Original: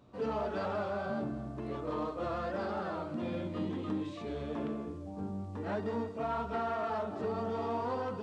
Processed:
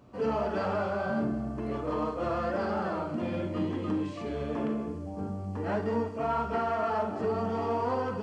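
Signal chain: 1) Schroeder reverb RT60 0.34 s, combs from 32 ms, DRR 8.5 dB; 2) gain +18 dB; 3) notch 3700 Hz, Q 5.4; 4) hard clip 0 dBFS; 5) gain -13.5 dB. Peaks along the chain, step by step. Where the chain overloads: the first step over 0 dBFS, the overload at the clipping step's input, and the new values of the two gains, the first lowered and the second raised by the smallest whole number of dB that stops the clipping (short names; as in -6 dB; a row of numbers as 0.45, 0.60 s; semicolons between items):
-22.5, -4.5, -4.5, -4.5, -18.0 dBFS; no overload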